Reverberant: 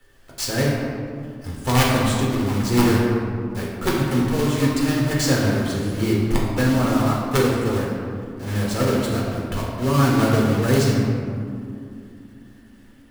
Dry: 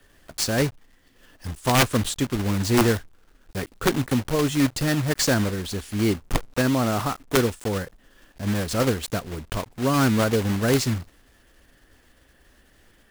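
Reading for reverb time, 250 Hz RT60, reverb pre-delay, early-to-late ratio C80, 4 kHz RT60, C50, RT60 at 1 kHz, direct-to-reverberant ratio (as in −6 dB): 2.6 s, 4.0 s, 6 ms, 1.5 dB, 1.1 s, 0.0 dB, 2.3 s, −4.5 dB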